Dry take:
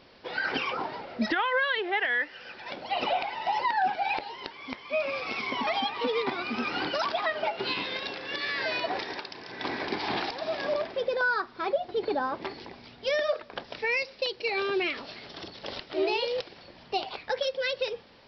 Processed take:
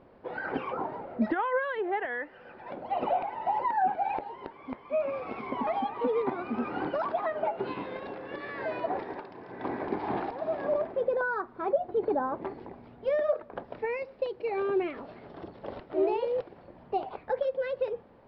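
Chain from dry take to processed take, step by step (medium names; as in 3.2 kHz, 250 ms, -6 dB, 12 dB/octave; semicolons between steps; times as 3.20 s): low-pass 1 kHz 12 dB/octave; trim +1.5 dB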